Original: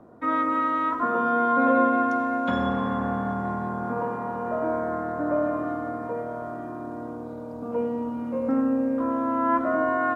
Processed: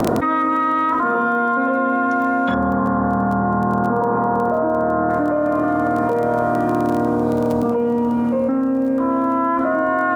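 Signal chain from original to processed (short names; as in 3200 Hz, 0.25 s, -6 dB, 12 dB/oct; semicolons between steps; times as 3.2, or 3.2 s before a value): 2.54–5.1 LPF 1500 Hz 24 dB/oct; crackle 18/s -37 dBFS; fast leveller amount 100%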